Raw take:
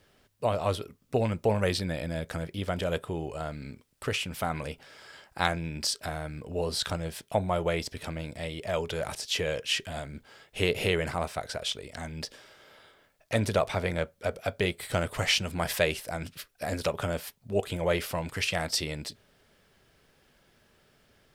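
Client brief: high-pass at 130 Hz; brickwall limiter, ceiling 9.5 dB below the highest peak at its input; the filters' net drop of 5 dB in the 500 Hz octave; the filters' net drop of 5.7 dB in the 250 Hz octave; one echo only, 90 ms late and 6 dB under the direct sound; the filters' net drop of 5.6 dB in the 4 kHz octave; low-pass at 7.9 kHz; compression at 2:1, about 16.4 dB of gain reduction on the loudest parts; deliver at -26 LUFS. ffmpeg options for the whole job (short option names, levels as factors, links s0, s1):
-af "highpass=130,lowpass=7900,equalizer=f=250:t=o:g=-6.5,equalizer=f=500:t=o:g=-4.5,equalizer=f=4000:t=o:g=-7.5,acompressor=threshold=0.00178:ratio=2,alimiter=level_in=3.98:limit=0.0631:level=0:latency=1,volume=0.251,aecho=1:1:90:0.501,volume=15"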